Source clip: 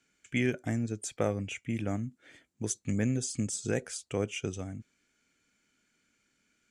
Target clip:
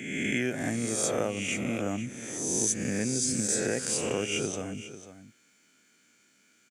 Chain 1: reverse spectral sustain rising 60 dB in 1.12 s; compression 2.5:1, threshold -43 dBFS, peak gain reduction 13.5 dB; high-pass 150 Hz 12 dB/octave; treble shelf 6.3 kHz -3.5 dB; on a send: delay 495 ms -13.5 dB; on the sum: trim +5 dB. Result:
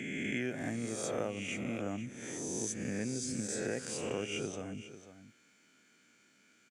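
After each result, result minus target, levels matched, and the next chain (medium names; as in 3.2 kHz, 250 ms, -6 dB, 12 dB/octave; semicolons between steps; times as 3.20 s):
compression: peak gain reduction +6.5 dB; 8 kHz band -3.0 dB
reverse spectral sustain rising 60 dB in 1.12 s; compression 2.5:1, threshold -32.5 dBFS, peak gain reduction 7.5 dB; high-pass 150 Hz 12 dB/octave; treble shelf 6.3 kHz -3.5 dB; on a send: delay 495 ms -13.5 dB; on the sum: trim +5 dB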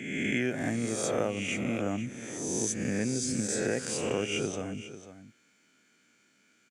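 8 kHz band -3.5 dB
reverse spectral sustain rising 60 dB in 1.12 s; compression 2.5:1, threshold -32.5 dBFS, peak gain reduction 7.5 dB; high-pass 150 Hz 12 dB/octave; treble shelf 6.3 kHz +6 dB; on a send: delay 495 ms -13.5 dB; on the sum: trim +5 dB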